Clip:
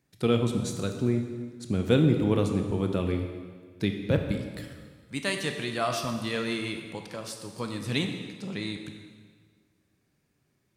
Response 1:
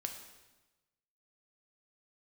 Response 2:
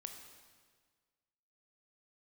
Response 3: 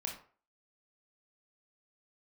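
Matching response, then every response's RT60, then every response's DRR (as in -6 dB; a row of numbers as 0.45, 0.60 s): 2; 1.1, 1.6, 0.45 s; 4.0, 4.5, 0.0 dB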